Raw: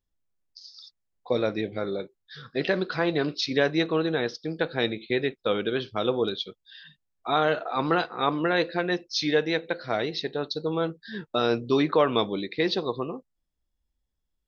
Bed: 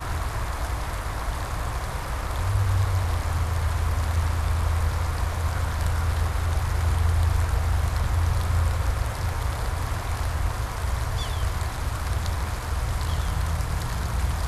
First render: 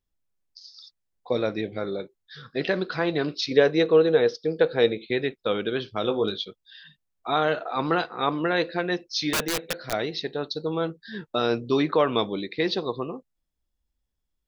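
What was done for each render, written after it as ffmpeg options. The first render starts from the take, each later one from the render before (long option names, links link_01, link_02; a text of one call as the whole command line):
ffmpeg -i in.wav -filter_complex "[0:a]asettb=1/sr,asplit=3[link_01][link_02][link_03];[link_01]atrim=end=3.514[link_04];[link_02]atrim=start=3.51:end=5.05,asetpts=PTS-STARTPTS,afade=type=in:duration=0.004:curve=qsin,afade=type=out:start_time=1.536:duration=0.004:curve=qsin,equalizer=frequency=470:width_type=o:width=0.38:gain=10.5[link_05];[link_03]atrim=start=5.046[link_06];[link_04][link_05]acrossfade=duration=0.004:curve1=hsin:curve2=qsin[link_07];[link_07][link_06]acrossfade=duration=0.004:curve1=qsin:curve2=hsin,asettb=1/sr,asplit=3[link_08][link_09][link_10];[link_08]atrim=end=6.024[link_11];[link_09]atrim=start=6.02:end=6.45,asetpts=PTS-STARTPTS,afade=type=in:duration=0.004:curve=qsin,afade=type=out:start_time=0.426:duration=0.004:curve=qsin,asplit=2[link_12][link_13];[link_13]adelay=19,volume=-7dB[link_14];[link_12][link_14]amix=inputs=2:normalize=0,atrim=end_sample=18963[link_15];[link_10]atrim=start=6.446[link_16];[link_11][link_15]acrossfade=duration=0.004:curve1=hsin:curve2=qsin[link_17];[link_17][link_16]acrossfade=duration=0.004:curve1=qsin:curve2=hsin,asettb=1/sr,asplit=3[link_18][link_19][link_20];[link_18]atrim=end=9.334[link_21];[link_19]atrim=start=9.33:end=9.93,asetpts=PTS-STARTPTS,afade=type=in:duration=0.004:curve=qsin,afade=type=out:start_time=0.596:duration=0.004:curve=qsin,aeval=exprs='(mod(9.44*val(0)+1,2)-1)/9.44':channel_layout=same[link_22];[link_20]atrim=start=9.926[link_23];[link_21][link_22]acrossfade=duration=0.004:curve1=hsin:curve2=qsin[link_24];[link_24][link_23]acrossfade=duration=0.004:curve1=qsin:curve2=hsin" out.wav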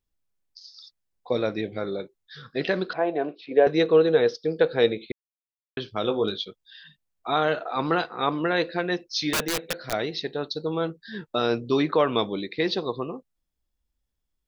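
ffmpeg -i in.wav -filter_complex "[0:a]asettb=1/sr,asplit=3[link_01][link_02][link_03];[link_01]atrim=end=2.934[link_04];[link_02]atrim=start=2.93:end=3.67,asetpts=PTS-STARTPTS,afade=type=in:duration=0.004:curve=qsin,afade=type=out:start_time=0.736:duration=0.004:curve=qsin,highpass=320,equalizer=frequency=700:width_type=q:width=4:gain=9,equalizer=frequency=1300:width_type=q:width=4:gain=-10,equalizer=frequency=2000:width_type=q:width=4:gain=-8,lowpass=frequency=2300:width=0.5412,lowpass=frequency=2300:width=1.3066[link_05];[link_03]atrim=start=3.666[link_06];[link_04][link_05]acrossfade=duration=0.004:curve1=hsin:curve2=qsin[link_07];[link_07][link_06]acrossfade=duration=0.004:curve1=qsin:curve2=hsin,asplit=3[link_08][link_09][link_10];[link_08]atrim=end=5.12,asetpts=PTS-STARTPTS,afade=type=out:start_time=5.116:duration=0.004:curve=hsin[link_11];[link_09]atrim=start=5.12:end=5.77,asetpts=PTS-STARTPTS,volume=0[link_12];[link_10]atrim=start=5.77,asetpts=PTS-STARTPTS,afade=type=in:duration=0.004:curve=hsin[link_13];[link_11][link_12][link_13]concat=n=3:v=0:a=1" out.wav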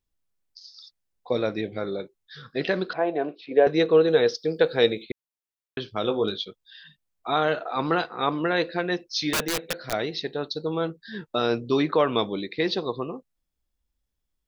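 ffmpeg -i in.wav -filter_complex "[0:a]asettb=1/sr,asplit=3[link_01][link_02][link_03];[link_01]atrim=end=4.084[link_04];[link_02]atrim=start=4.08:end=5.03,asetpts=PTS-STARTPTS,afade=type=in:duration=0.004:curve=qsin,afade=type=out:start_time=0.946:duration=0.004:curve=qsin,highshelf=frequency=4700:gain=10.5[link_05];[link_03]atrim=start=5.026[link_06];[link_04][link_05]acrossfade=duration=0.004:curve1=hsin:curve2=qsin[link_07];[link_07][link_06]acrossfade=duration=0.004:curve1=qsin:curve2=hsin" out.wav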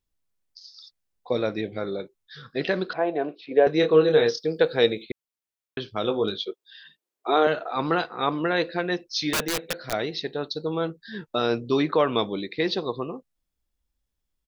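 ffmpeg -i in.wav -filter_complex "[0:a]asplit=3[link_01][link_02][link_03];[link_01]afade=type=out:start_time=3.82:duration=0.02[link_04];[link_02]asplit=2[link_05][link_06];[link_06]adelay=26,volume=-5dB[link_07];[link_05][link_07]amix=inputs=2:normalize=0,afade=type=in:start_time=3.82:duration=0.02,afade=type=out:start_time=4.39:duration=0.02[link_08];[link_03]afade=type=in:start_time=4.39:duration=0.02[link_09];[link_04][link_08][link_09]amix=inputs=3:normalize=0,asettb=1/sr,asplit=3[link_10][link_11][link_12];[link_10]atrim=end=6.434[link_13];[link_11]atrim=start=6.43:end=7.47,asetpts=PTS-STARTPTS,afade=type=in:duration=0.004:curve=qsin,afade=type=out:start_time=1.036:duration=0.004:curve=qsin,highpass=frequency=370:width_type=q:width=4[link_14];[link_12]atrim=start=7.466[link_15];[link_13][link_14]acrossfade=duration=0.004:curve1=hsin:curve2=qsin[link_16];[link_16][link_15]acrossfade=duration=0.004:curve1=qsin:curve2=hsin" out.wav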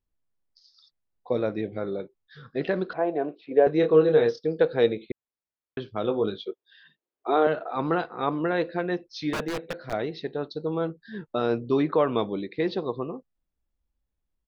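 ffmpeg -i in.wav -af "lowpass=frequency=1200:poles=1" out.wav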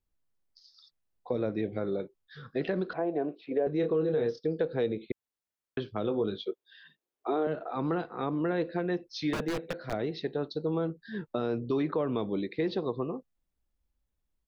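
ffmpeg -i in.wav -filter_complex "[0:a]acrossover=split=420[link_01][link_02];[link_01]alimiter=level_in=0.5dB:limit=-24dB:level=0:latency=1,volume=-0.5dB[link_03];[link_02]acompressor=threshold=-34dB:ratio=5[link_04];[link_03][link_04]amix=inputs=2:normalize=0" out.wav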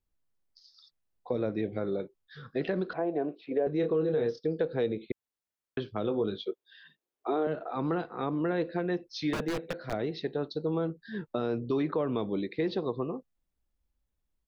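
ffmpeg -i in.wav -af anull out.wav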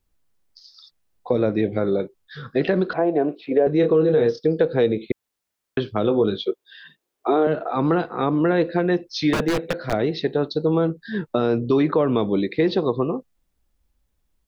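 ffmpeg -i in.wav -af "volume=10.5dB" out.wav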